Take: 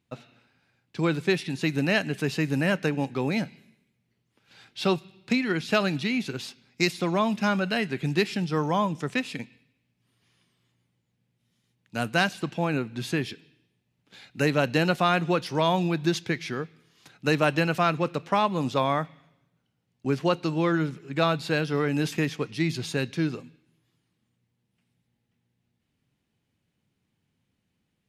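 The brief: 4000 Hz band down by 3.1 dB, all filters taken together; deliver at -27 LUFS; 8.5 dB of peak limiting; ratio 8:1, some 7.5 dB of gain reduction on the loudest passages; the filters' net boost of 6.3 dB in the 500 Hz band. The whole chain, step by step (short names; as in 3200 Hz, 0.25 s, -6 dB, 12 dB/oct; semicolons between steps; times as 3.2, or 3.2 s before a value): bell 500 Hz +8 dB; bell 4000 Hz -4 dB; compressor 8:1, threshold -22 dBFS; gain +4 dB; limiter -15.5 dBFS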